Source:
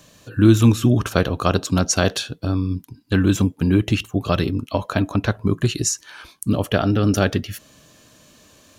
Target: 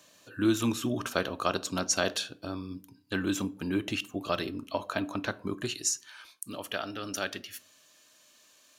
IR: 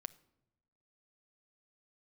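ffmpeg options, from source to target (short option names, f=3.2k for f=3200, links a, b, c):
-filter_complex "[0:a]asetnsamples=n=441:p=0,asendcmd='5.73 highpass f 1500',highpass=f=520:p=1[a];[1:a]atrim=start_sample=2205,asetrate=88200,aresample=44100[b];[a][b]afir=irnorm=-1:irlink=0,volume=3.5dB"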